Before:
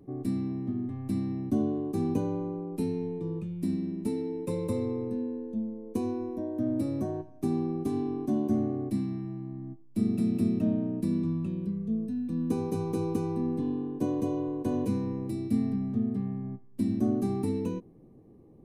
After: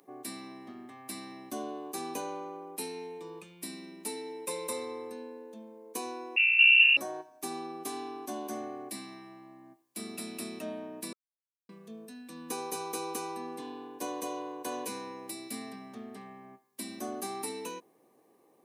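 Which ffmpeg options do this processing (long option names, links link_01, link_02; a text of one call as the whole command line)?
ffmpeg -i in.wav -filter_complex "[0:a]asettb=1/sr,asplit=3[link_01][link_02][link_03];[link_01]atrim=end=6.364[link_04];[link_02]atrim=start=6.36:end=6.97,asetpts=PTS-STARTPTS,afade=type=in:duration=0.004:curve=qsin,afade=type=out:start_time=0.606:duration=0.004:curve=qsin,lowpass=frequency=2600:width_type=q:width=0.5098,lowpass=frequency=2600:width_type=q:width=0.6013,lowpass=frequency=2600:width_type=q:width=0.9,lowpass=frequency=2600:width_type=q:width=2.563,afreqshift=-3000[link_05];[link_03]atrim=start=6.966[link_06];[link_04][link_05]acrossfade=duration=0.004:curve1=hsin:curve2=qsin[link_07];[link_07][link_06]acrossfade=duration=0.004:curve1=qsin:curve2=hsin,asplit=3[link_08][link_09][link_10];[link_08]atrim=end=11.13,asetpts=PTS-STARTPTS,afade=type=out:start_time=11.126:duration=0.004:curve=hsin[link_11];[link_09]atrim=start=11.13:end=11.69,asetpts=PTS-STARTPTS,volume=0[link_12];[link_10]atrim=start=11.69,asetpts=PTS-STARTPTS,afade=type=in:duration=0.004:curve=hsin[link_13];[link_11][link_12][link_13]concat=n=3:v=0:a=1,highpass=950,highshelf=frequency=5400:gain=7,bandreject=frequency=1300:width=27,volume=8dB" out.wav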